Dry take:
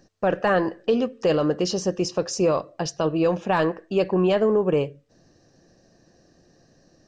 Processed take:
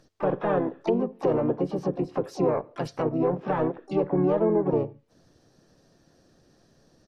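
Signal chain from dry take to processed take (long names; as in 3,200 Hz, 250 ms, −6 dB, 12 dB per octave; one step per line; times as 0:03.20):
treble cut that deepens with the level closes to 970 Hz, closed at −19.5 dBFS
pitch-shifted copies added −4 semitones −4 dB, +7 semitones −12 dB, +12 semitones −15 dB
level −4.5 dB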